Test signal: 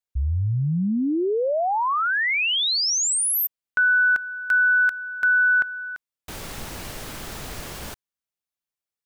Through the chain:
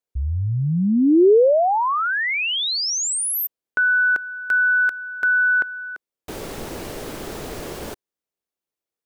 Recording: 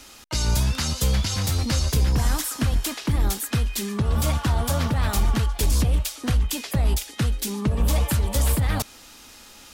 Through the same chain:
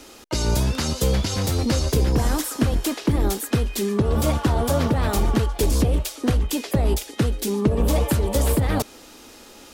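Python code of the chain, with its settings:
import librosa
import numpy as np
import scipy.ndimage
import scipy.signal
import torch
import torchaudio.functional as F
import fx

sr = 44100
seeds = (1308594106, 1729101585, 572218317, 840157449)

y = fx.peak_eq(x, sr, hz=400.0, db=11.5, octaves=1.7)
y = y * 10.0 ** (-1.0 / 20.0)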